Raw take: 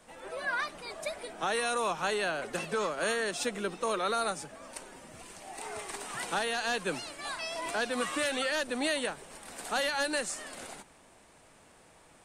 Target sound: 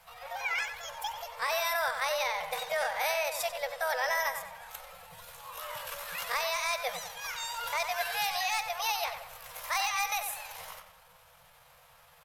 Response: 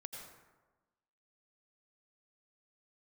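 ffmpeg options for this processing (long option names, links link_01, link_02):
-filter_complex "[0:a]asetrate=62367,aresample=44100,atempo=0.707107,asplit=2[link_01][link_02];[link_02]adelay=93,lowpass=frequency=3600:poles=1,volume=-7.5dB,asplit=2[link_03][link_04];[link_04]adelay=93,lowpass=frequency=3600:poles=1,volume=0.47,asplit=2[link_05][link_06];[link_06]adelay=93,lowpass=frequency=3600:poles=1,volume=0.47,asplit=2[link_07][link_08];[link_08]adelay=93,lowpass=frequency=3600:poles=1,volume=0.47,asplit=2[link_09][link_10];[link_10]adelay=93,lowpass=frequency=3600:poles=1,volume=0.47[link_11];[link_01][link_03][link_05][link_07][link_09][link_11]amix=inputs=6:normalize=0,afftfilt=real='re*(1-between(b*sr/4096,190,460))':imag='im*(1-between(b*sr/4096,190,460))':win_size=4096:overlap=0.75"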